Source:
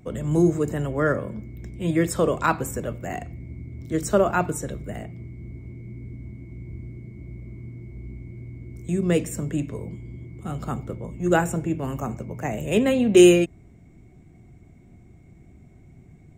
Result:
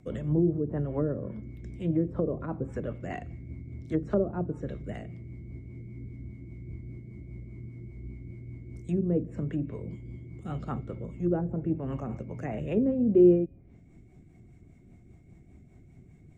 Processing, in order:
treble cut that deepens with the level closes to 460 Hz, closed at −19 dBFS
tuned comb filter 270 Hz, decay 1 s, mix 40%
rotating-speaker cabinet horn 5 Hz
level +1.5 dB

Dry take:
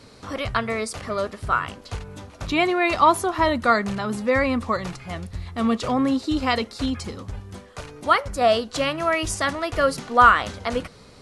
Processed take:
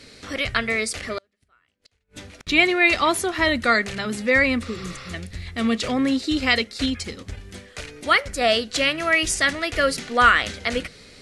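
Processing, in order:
mains-hum notches 50/100/150/200 Hz
0:04.67–0:05.11: healed spectral selection 490–5,900 Hz before
graphic EQ with 10 bands 125 Hz −5 dB, 1,000 Hz −11 dB, 2,000 Hz +8 dB, 4,000 Hz +3 dB, 8,000 Hz +3 dB
0:01.18–0:02.47: gate with flip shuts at −27 dBFS, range −39 dB
0:06.57–0:07.40: transient designer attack +2 dB, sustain −4 dB
level +1.5 dB

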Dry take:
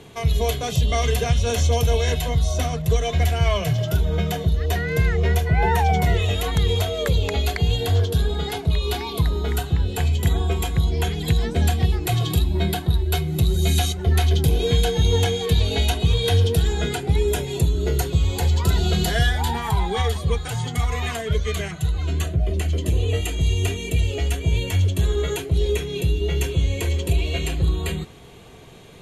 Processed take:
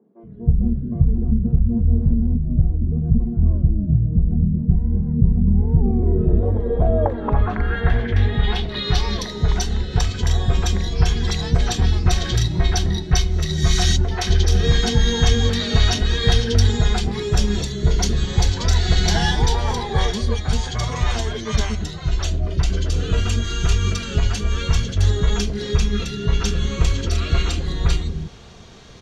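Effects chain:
pitch-shifted copies added −12 semitones −1 dB
three-band delay without the direct sound mids, highs, lows 40/230 ms, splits 360/2,100 Hz
low-pass filter sweep 200 Hz → 5,600 Hz, 0:05.62–0:09.11

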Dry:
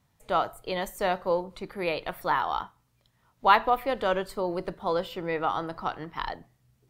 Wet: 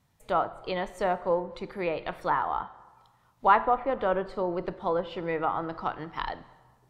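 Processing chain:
treble cut that deepens with the level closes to 1,600 Hz, closed at −24 dBFS
on a send: convolution reverb RT60 1.4 s, pre-delay 23 ms, DRR 16 dB

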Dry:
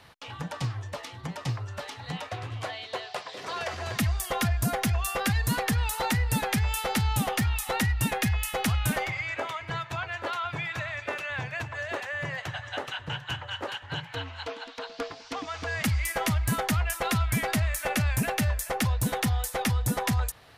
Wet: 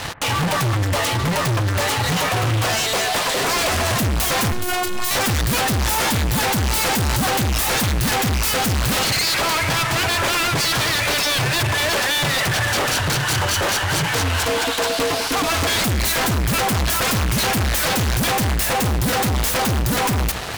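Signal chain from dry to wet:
phase distortion by the signal itself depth 0.5 ms
fuzz pedal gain 51 dB, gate −55 dBFS
0:04.52–0:05.11: phases set to zero 362 Hz
on a send: delay that swaps between a low-pass and a high-pass 125 ms, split 2,000 Hz, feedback 58%, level −14 dB
on the sum: level −5 dB

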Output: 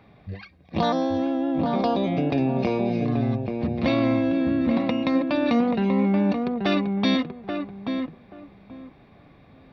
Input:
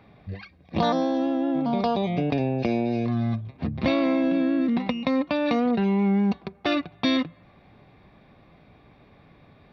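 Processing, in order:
feedback echo with a low-pass in the loop 832 ms, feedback 20%, low-pass 1,300 Hz, level −4 dB

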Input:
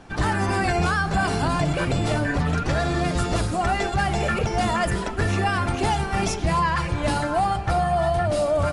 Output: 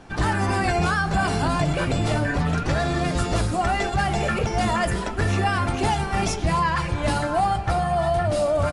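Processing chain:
double-tracking delay 19 ms −13 dB

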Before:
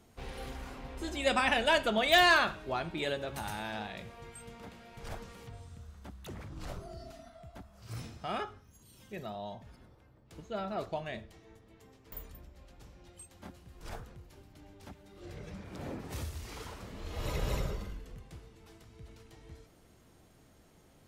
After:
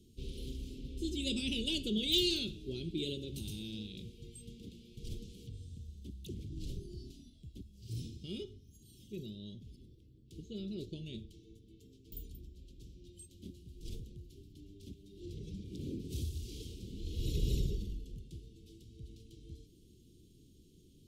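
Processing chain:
elliptic band-stop filter 380–3,200 Hz, stop band 40 dB
high-shelf EQ 5,500 Hz −6 dB
level +2 dB

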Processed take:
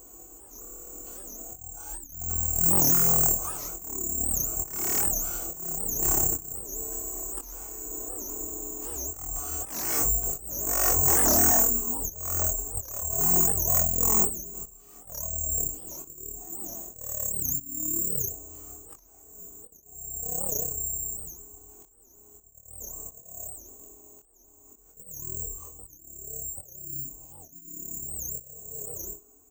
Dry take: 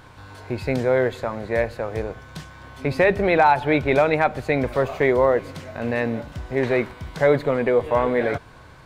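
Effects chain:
source passing by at 0:01.96, 31 m/s, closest 18 metres
graphic EQ with 15 bands 400 Hz −11 dB, 2,500 Hz +3 dB, 6,300 Hz −8 dB
wave folding −27.5 dBFS
high-pass filter 150 Hz 12 dB per octave
change of speed 0.3×
gain on a spectral selection 0:01.96–0:02.21, 380–3,400 Hz −18 dB
bad sample-rate conversion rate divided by 6×, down filtered, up zero stuff
comb filter 2.7 ms, depth 57%
volume swells 586 ms
ambience of single reflections 24 ms −3 dB, 60 ms −14 dB
wow of a warped record 78 rpm, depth 250 cents
level +1.5 dB

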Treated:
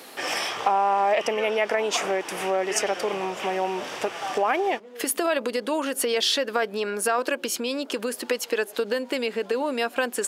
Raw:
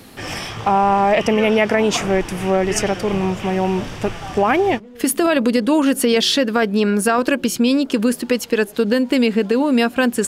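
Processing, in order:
downward compressor 4 to 1, threshold −21 dBFS, peak gain reduction 8.5 dB
Chebyshev high-pass filter 520 Hz, order 2
level +2 dB

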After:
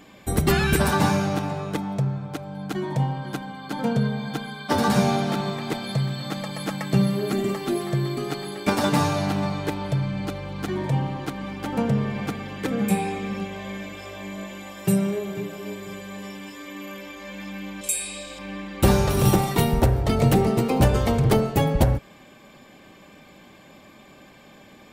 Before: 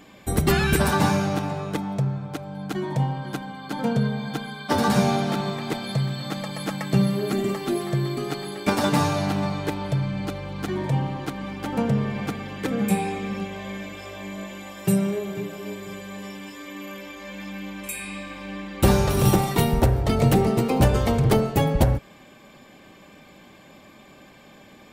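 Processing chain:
0:17.81–0:18.39: octave-band graphic EQ 125/250/500/1,000/2,000/4,000/8,000 Hz −10/−6/+6/−5/−6/+6/+11 dB

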